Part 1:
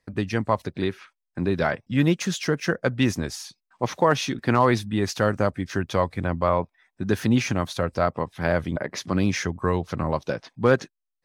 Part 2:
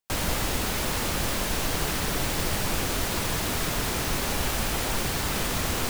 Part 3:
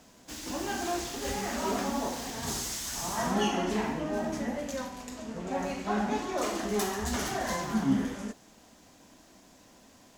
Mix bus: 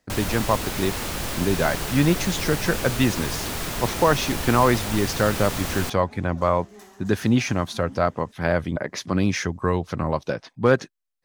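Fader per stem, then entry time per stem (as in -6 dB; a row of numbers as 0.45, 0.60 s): +1.0, -1.5, -17.0 dB; 0.00, 0.00, 0.00 s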